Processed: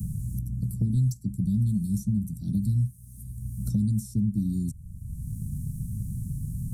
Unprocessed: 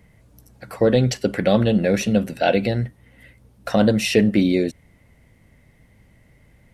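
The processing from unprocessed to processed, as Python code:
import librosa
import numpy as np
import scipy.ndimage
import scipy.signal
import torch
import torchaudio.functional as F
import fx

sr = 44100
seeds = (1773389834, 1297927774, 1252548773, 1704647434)

y = scipy.signal.sosfilt(scipy.signal.cheby2(4, 60, [490.0, 2900.0], 'bandstop', fs=sr, output='sos'), x)
y = fx.band_squash(y, sr, depth_pct=100)
y = y * librosa.db_to_amplitude(1.5)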